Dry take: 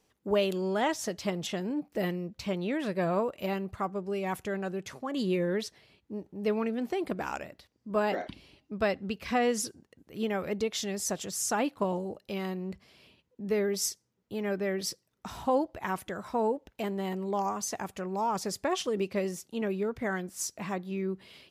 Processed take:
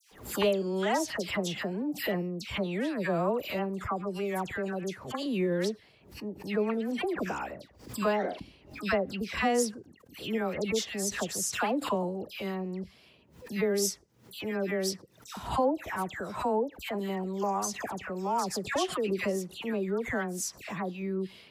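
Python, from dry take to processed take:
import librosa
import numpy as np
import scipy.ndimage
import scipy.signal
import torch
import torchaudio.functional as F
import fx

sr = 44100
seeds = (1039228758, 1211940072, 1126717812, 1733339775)

y = fx.dispersion(x, sr, late='lows', ms=118.0, hz=1700.0)
y = fx.pre_swell(y, sr, db_per_s=110.0)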